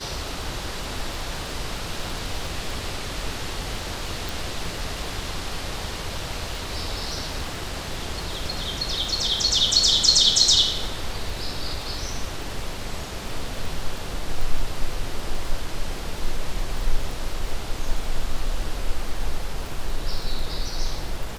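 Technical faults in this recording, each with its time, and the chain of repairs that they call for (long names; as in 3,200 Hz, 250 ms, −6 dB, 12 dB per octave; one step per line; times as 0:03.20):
surface crackle 35 per second −30 dBFS
0:04.29: click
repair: click removal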